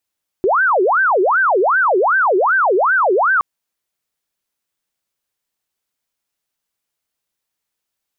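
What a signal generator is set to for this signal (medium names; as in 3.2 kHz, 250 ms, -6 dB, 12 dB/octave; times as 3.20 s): siren wail 360–1570 Hz 2.6 per s sine -11 dBFS 2.97 s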